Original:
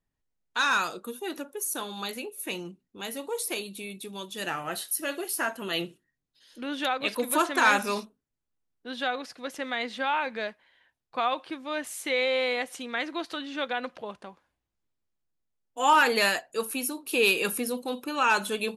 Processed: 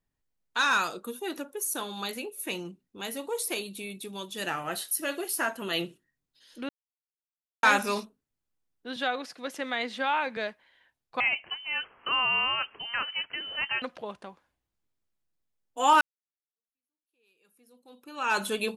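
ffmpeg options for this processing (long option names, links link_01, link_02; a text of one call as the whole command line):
ffmpeg -i in.wav -filter_complex "[0:a]asettb=1/sr,asplit=3[link_01][link_02][link_03];[link_01]atrim=end=8.964[link_04];[link_02]atrim=start=8.96:end=10.37,asetpts=PTS-STARTPTS,afade=type=in:duration=0.004:curve=qsin,afade=type=out:start_time=1.406:duration=0.004:curve=qsin,highpass=frequency=140:width=0.5412,highpass=frequency=140:width=1.3066[link_05];[link_03]atrim=start=10.366[link_06];[link_04][link_05]acrossfade=duration=0.004:curve1=hsin:curve2=qsin[link_07];[link_07][link_06]acrossfade=duration=0.004:curve1=qsin:curve2=hsin,asettb=1/sr,asplit=3[link_08][link_09][link_10];[link_08]atrim=end=11.204[link_11];[link_09]atrim=start=11.2:end=13.82,asetpts=PTS-STARTPTS,afade=type=in:duration=0.004:curve=qsin,afade=type=out:start_time=2.616:duration=0.004:curve=qsin,lowpass=frequency=2800:width_type=q:width=0.5098,lowpass=frequency=2800:width_type=q:width=0.6013,lowpass=frequency=2800:width_type=q:width=0.9,lowpass=frequency=2800:width_type=q:width=2.563,afreqshift=-3300[link_12];[link_10]atrim=start=13.816[link_13];[link_11][link_12]acrossfade=duration=0.004:curve1=hsin:curve2=qsin[link_14];[link_14][link_13]acrossfade=duration=0.004:curve1=qsin:curve2=hsin,asplit=4[link_15][link_16][link_17][link_18];[link_15]atrim=end=6.69,asetpts=PTS-STARTPTS,afade=type=out:start_time=6.686:duration=0.004:curve=hsin[link_19];[link_16]atrim=start=6.69:end=7.63,asetpts=PTS-STARTPTS,volume=0[link_20];[link_17]atrim=start=7.63:end=16.01,asetpts=PTS-STARTPTS,afade=type=in:duration=0.004:curve=hsin,afade=type=out:start_time=8.376:duration=0.004:curve=hsin[link_21];[link_18]atrim=start=16.01,asetpts=PTS-STARTPTS,afade=type=in:duration=2.39:curve=exp[link_22];[link_19][link_20][link_21][link_22]concat=n=4:v=0:a=1" out.wav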